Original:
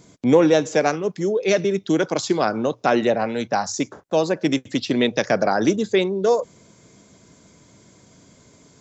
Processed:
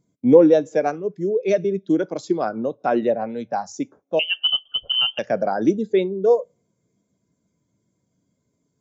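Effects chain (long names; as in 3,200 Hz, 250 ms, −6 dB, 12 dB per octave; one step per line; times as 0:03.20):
0:04.19–0:05.19: voice inversion scrambler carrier 3,300 Hz
coupled-rooms reverb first 0.44 s, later 1.6 s, DRR 19 dB
every bin expanded away from the loudest bin 1.5 to 1
level +2.5 dB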